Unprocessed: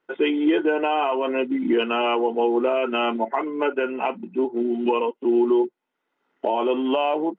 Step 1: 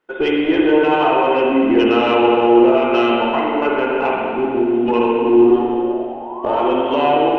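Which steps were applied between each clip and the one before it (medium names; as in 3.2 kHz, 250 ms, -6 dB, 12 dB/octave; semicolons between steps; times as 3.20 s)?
single-diode clipper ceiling -12.5 dBFS; painted sound rise, 5.17–6.61 s, 240–1400 Hz -38 dBFS; spring tank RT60 2.4 s, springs 48/59 ms, chirp 75 ms, DRR -3.5 dB; trim +3 dB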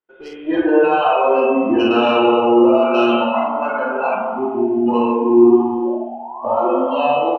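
spectral noise reduction 19 dB; on a send: early reflections 30 ms -5 dB, 50 ms -5.5 dB; on the sum: trim -1 dB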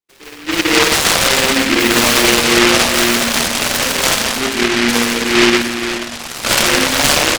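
band-stop 380 Hz, Q 12; level rider; delay time shaken by noise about 2 kHz, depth 0.4 ms; trim -1 dB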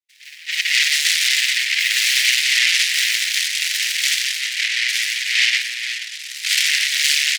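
elliptic high-pass 1.9 kHz, stop band 50 dB; treble shelf 7.8 kHz -9.5 dB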